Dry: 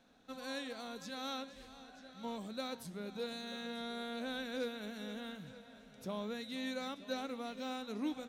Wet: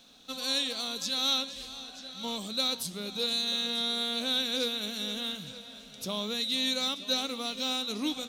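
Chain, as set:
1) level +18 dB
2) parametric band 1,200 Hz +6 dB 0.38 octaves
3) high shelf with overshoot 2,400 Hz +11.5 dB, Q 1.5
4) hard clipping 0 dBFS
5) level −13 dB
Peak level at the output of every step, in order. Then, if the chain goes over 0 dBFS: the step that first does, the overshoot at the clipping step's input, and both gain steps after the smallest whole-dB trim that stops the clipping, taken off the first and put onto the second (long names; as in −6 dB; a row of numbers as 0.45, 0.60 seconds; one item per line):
−8.5, −8.0, −2.5, −2.5, −15.5 dBFS
no step passes full scale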